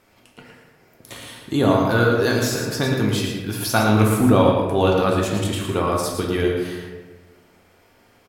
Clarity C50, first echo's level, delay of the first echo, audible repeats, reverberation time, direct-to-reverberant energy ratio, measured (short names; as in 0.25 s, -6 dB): 1.5 dB, -7.0 dB, 0.113 s, 1, 1.4 s, -2.0 dB